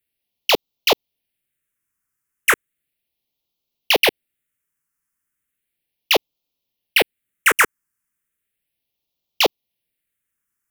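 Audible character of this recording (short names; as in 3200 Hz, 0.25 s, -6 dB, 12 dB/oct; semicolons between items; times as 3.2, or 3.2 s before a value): phasing stages 4, 0.35 Hz, lowest notch 640–1600 Hz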